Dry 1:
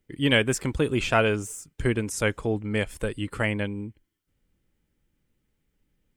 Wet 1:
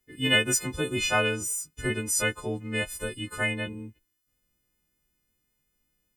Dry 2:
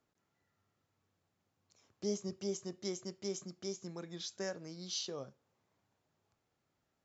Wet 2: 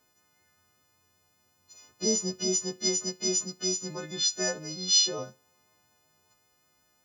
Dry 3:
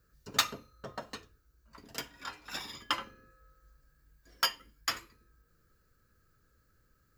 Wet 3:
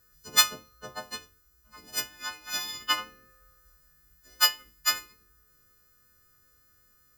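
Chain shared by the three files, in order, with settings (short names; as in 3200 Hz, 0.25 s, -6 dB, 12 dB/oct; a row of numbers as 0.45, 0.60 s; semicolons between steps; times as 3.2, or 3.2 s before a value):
frequency quantiser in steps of 3 st; vibrato 5.3 Hz 7.1 cents; match loudness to -27 LUFS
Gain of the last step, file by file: -4.5, +8.0, +0.5 dB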